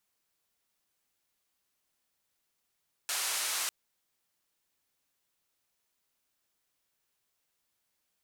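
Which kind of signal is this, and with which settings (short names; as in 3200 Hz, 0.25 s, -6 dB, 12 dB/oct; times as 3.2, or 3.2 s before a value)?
noise band 760–11000 Hz, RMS -33 dBFS 0.60 s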